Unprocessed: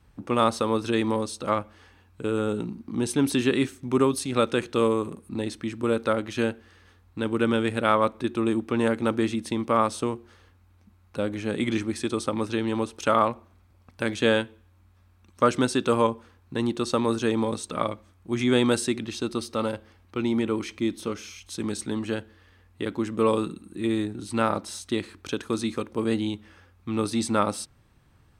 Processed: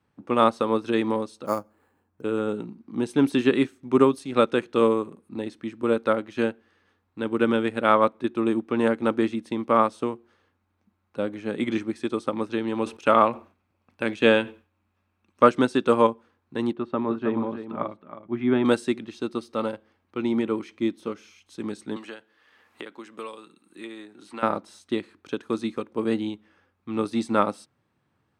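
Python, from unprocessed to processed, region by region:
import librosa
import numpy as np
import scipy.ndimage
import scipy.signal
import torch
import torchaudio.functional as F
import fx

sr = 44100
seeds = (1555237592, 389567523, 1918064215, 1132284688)

y = fx.chain(x, sr, fx.sample_hold(seeds[0], rate_hz=5800.0, jitter_pct=0),
    fx.peak_eq(hz=3600.0, db=-13.5, octaves=1.8), at=(1.46, 2.22))
y = fx.chain(y, sr, fx.peak_eq(hz=2600.0, db=6.5, octaves=0.26),
    fx.sustainer(db_per_s=120.0), at=(12.77, 15.49))
y = fx.chain(y, sr, fx.air_absorb(metres=500.0),
    fx.notch(hz=490.0, q=5.9),
    fx.echo_single(ms=317, db=-7.5), at=(16.73, 18.65))
y = fx.chain(y, sr, fx.highpass(hz=1100.0, slope=6),
    fx.band_squash(depth_pct=100), at=(21.96, 24.43))
y = scipy.signal.sosfilt(scipy.signal.butter(2, 160.0, 'highpass', fs=sr, output='sos'), y)
y = fx.high_shelf(y, sr, hz=4200.0, db=-10.5)
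y = fx.upward_expand(y, sr, threshold_db=-40.0, expansion=1.5)
y = F.gain(torch.from_numpy(y), 5.5).numpy()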